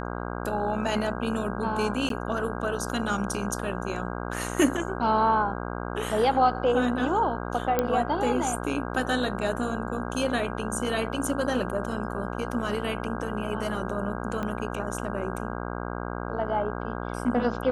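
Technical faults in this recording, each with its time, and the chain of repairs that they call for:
buzz 60 Hz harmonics 27 -33 dBFS
2.09–2.10 s: dropout 13 ms
7.79 s: pop -10 dBFS
14.43 s: pop -19 dBFS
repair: de-click; de-hum 60 Hz, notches 27; interpolate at 2.09 s, 13 ms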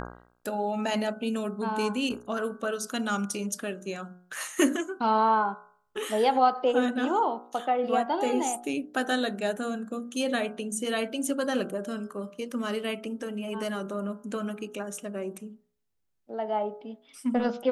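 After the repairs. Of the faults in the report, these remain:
14.43 s: pop

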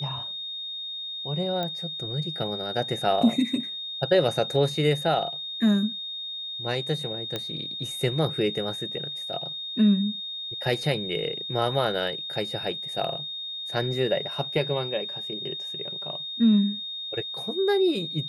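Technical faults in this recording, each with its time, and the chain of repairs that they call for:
whine 3.7 kHz -32 dBFS
1.63 s: pop -17 dBFS
7.36 s: pop -15 dBFS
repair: de-click; band-stop 3.7 kHz, Q 30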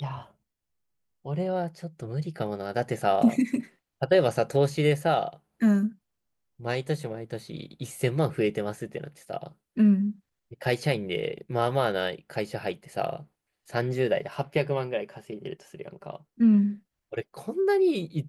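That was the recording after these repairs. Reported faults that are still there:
nothing left

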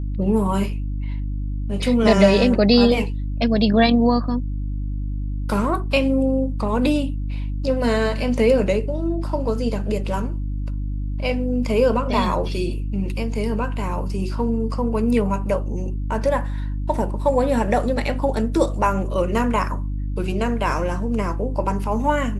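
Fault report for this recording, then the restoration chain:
hum 50 Hz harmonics 6 -25 dBFS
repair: de-hum 50 Hz, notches 6

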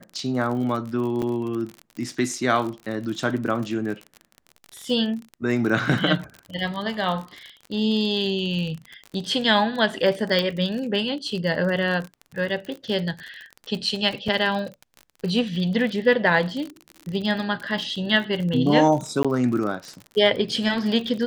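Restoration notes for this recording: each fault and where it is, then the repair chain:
crackle 40 per s -29 dBFS
1.22–1.23 s: dropout 5.8 ms
10.39 s: pop -11 dBFS
14.28 s: dropout 4.5 ms
19.23–19.25 s: dropout 16 ms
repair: de-click; interpolate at 1.22 s, 5.8 ms; interpolate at 14.28 s, 4.5 ms; interpolate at 19.23 s, 16 ms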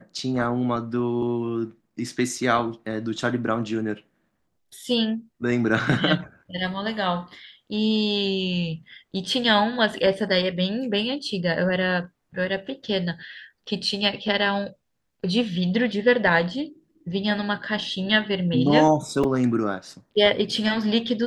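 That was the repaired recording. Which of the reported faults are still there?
nothing left

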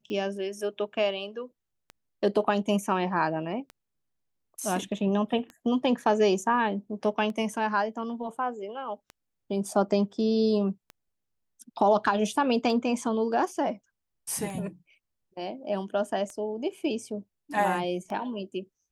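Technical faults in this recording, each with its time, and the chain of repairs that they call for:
tick 33 1/3 rpm -26 dBFS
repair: de-click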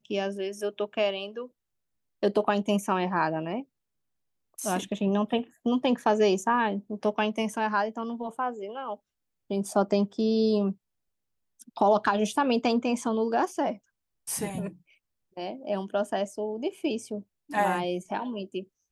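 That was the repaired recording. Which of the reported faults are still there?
nothing left

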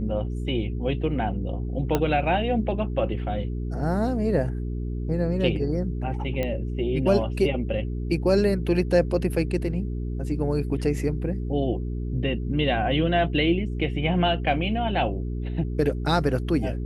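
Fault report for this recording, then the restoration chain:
hum 60 Hz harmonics 7 -29 dBFS
1.95 s: pop -9 dBFS
6.43 s: pop -15 dBFS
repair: de-click; de-hum 60 Hz, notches 7

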